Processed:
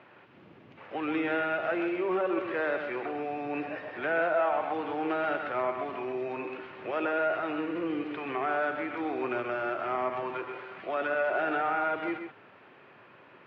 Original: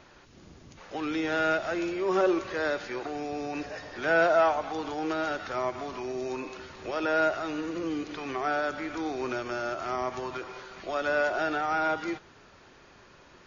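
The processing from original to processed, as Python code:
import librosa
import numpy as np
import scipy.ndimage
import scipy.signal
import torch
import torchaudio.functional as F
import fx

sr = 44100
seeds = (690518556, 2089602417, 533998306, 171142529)

p1 = scipy.signal.sosfilt(scipy.signal.ellip(3, 1.0, 60, [110.0, 2700.0], 'bandpass', fs=sr, output='sos'), x)
p2 = fx.low_shelf(p1, sr, hz=170.0, db=-7.5)
p3 = fx.over_compress(p2, sr, threshold_db=-30.0, ratio=-0.5)
p4 = p2 + (p3 * librosa.db_to_amplitude(-1.5))
p5 = p4 + 10.0 ** (-7.5 / 20.0) * np.pad(p4, (int(131 * sr / 1000.0), 0))[:len(p4)]
y = p5 * librosa.db_to_amplitude(-5.0)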